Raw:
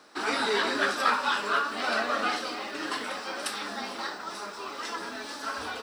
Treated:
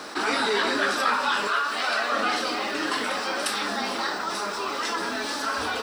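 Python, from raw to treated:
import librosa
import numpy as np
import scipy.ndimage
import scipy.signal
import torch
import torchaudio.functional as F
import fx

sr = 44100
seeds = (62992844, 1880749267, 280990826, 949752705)

y = fx.highpass(x, sr, hz=790.0, slope=6, at=(1.47, 2.12))
y = fx.env_flatten(y, sr, amount_pct=50)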